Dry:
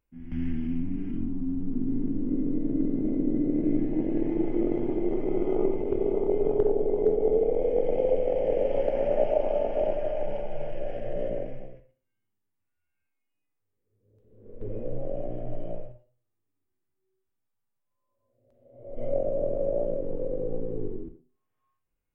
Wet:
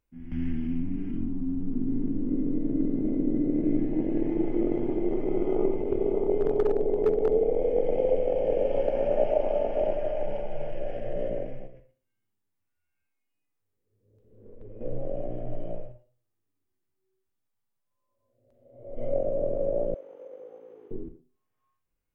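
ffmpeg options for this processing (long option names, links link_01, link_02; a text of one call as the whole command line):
ffmpeg -i in.wav -filter_complex "[0:a]asettb=1/sr,asplit=3[link_01][link_02][link_03];[link_01]atrim=end=6.344[link_04];[link_02]atrim=start=6.34:end=7.33,asetpts=PTS-STARTPTS,afade=type=in:duration=0.004:curve=qsin,afade=type=out:start_time=0.986:duration=0.004:curve=qsin,volume=16dB,asoftclip=hard,volume=-16dB[link_05];[link_03]atrim=start=7.326[link_06];[link_04][link_05]acrossfade=duration=0.004:curve1=hsin:curve2=qsin[link_07];[link_07][link_06]acrossfade=duration=0.004:curve1=qsin:curve2=hsin,asettb=1/sr,asplit=3[link_08][link_09][link_10];[link_08]atrim=end=8.264[link_11];[link_09]atrim=start=8.26:end=9.25,asetpts=PTS-STARTPTS,afade=type=in:duration=0.004:curve=qsin,afade=type=out:start_time=0.986:duration=0.004:curve=qsin,bandreject=frequency=2000:width=12[link_12];[link_10]atrim=start=9.246[link_13];[link_11][link_12]acrossfade=duration=0.004:curve1=hsin:curve2=qsin[link_14];[link_14][link_13]acrossfade=duration=0.004:curve1=qsin:curve2=hsin,asettb=1/sr,asplit=3[link_15][link_16][link_17];[link_15]atrim=end=11.674[link_18];[link_16]atrim=start=11.67:end=14.81,asetpts=PTS-STARTPTS,afade=type=in:duration=0.004:curve=qsin,afade=type=out:start_time=3.136:duration=0.004:curve=qsin,acompressor=threshold=-42dB:ratio=3:attack=3.2:release=140:knee=1:detection=peak[link_19];[link_17]atrim=start=14.806[link_20];[link_18][link_19]acrossfade=duration=0.004:curve1=hsin:curve2=qsin[link_21];[link_21][link_20]acrossfade=duration=0.004:curve1=qsin:curve2=hsin,asettb=1/sr,asplit=3[link_22][link_23][link_24];[link_22]atrim=end=19.944[link_25];[link_23]atrim=start=19.94:end=20.91,asetpts=PTS-STARTPTS,afade=type=in:duration=0.004:curve=qsin,afade=type=out:start_time=0.966:duration=0.004:curve=qsin,highpass=1000[link_26];[link_24]atrim=start=20.906[link_27];[link_25][link_26]acrossfade=duration=0.004:curve1=hsin:curve2=qsin[link_28];[link_28][link_27]acrossfade=duration=0.004:curve1=qsin:curve2=hsin" out.wav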